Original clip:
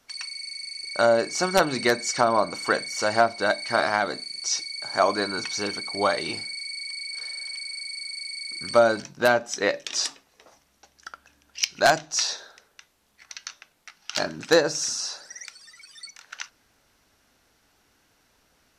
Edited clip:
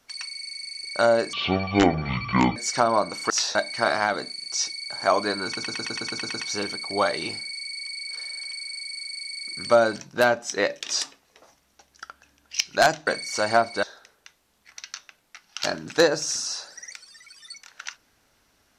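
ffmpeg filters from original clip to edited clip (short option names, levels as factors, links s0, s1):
-filter_complex "[0:a]asplit=15[s0][s1][s2][s3][s4][s5][s6][s7][s8][s9][s10][s11][s12][s13][s14];[s0]atrim=end=1.334[s15];[s1]atrim=start=1.33:end=1.97,asetpts=PTS-STARTPTS,asetrate=22932,aresample=44100[s16];[s2]atrim=start=1.966:end=2.712[s17];[s3]atrim=start=12.108:end=12.362[s18];[s4]atrim=start=3.468:end=5.492[s19];[s5]atrim=start=5.378:end=5.492[s20];[s6]atrim=start=5.378:end=5.492[s21];[s7]atrim=start=5.378:end=5.492[s22];[s8]atrim=start=5.378:end=5.492[s23];[s9]atrim=start=5.378:end=5.492[s24];[s10]atrim=start=5.378:end=5.492[s25];[s11]atrim=start=5.378:end=5.492[s26];[s12]atrim=start=5.378:end=12.112[s27];[s13]atrim=start=2.708:end=3.472[s28];[s14]atrim=start=12.358[s29];[s15][s16]acrossfade=d=0.004:c1=hsin:c2=hsin[s30];[s30][s17]acrossfade=d=0.004:c1=hsin:c2=hsin[s31];[s31][s18]acrossfade=d=0.004:c1=hsin:c2=hsin[s32];[s32][s19]acrossfade=d=0.004:c1=hsin:c2=hsin[s33];[s33][s20]acrossfade=d=0.004:c1=hsin:c2=hsin[s34];[s34][s21]acrossfade=d=0.004:c1=hsin:c2=hsin[s35];[s35][s22]acrossfade=d=0.004:c1=hsin:c2=hsin[s36];[s36][s23]acrossfade=d=0.004:c1=hsin:c2=hsin[s37];[s37][s24]acrossfade=d=0.004:c1=hsin:c2=hsin[s38];[s38][s25]acrossfade=d=0.004:c1=hsin:c2=hsin[s39];[s39][s26]acrossfade=d=0.004:c1=hsin:c2=hsin[s40];[s40][s27]acrossfade=d=0.004:c1=hsin:c2=hsin[s41];[s41][s28]acrossfade=d=0.004:c1=hsin:c2=hsin[s42];[s42][s29]acrossfade=d=0.004:c1=hsin:c2=hsin"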